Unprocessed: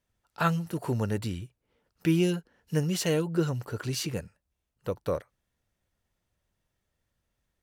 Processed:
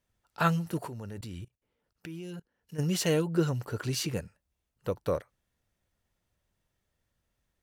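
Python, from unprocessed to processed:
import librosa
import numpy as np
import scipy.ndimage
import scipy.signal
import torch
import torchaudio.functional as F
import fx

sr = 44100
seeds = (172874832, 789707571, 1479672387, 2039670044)

y = fx.level_steps(x, sr, step_db=20, at=(0.86, 2.78), fade=0.02)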